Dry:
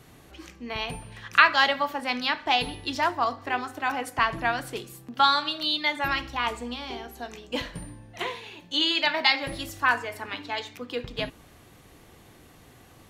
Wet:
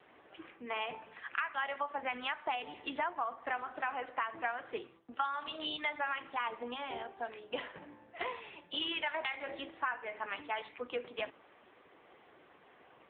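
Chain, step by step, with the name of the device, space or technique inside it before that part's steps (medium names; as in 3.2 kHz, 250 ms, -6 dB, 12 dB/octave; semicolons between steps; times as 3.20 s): 4.21–5.30 s: expander -39 dBFS; voicemail (band-pass 420–2600 Hz; compression 8:1, threshold -31 dBFS, peak gain reduction 18.5 dB; AMR-NB 6.7 kbps 8 kHz)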